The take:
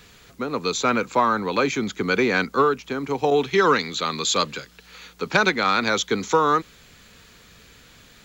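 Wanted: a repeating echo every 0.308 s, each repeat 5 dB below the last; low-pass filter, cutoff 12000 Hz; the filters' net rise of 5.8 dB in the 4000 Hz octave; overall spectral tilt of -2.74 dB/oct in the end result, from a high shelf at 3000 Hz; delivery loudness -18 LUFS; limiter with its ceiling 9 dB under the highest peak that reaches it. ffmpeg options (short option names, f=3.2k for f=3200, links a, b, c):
-af "lowpass=12k,highshelf=f=3k:g=5,equalizer=f=4k:t=o:g=3,alimiter=limit=-11dB:level=0:latency=1,aecho=1:1:308|616|924|1232|1540|1848|2156:0.562|0.315|0.176|0.0988|0.0553|0.031|0.0173,volume=3.5dB"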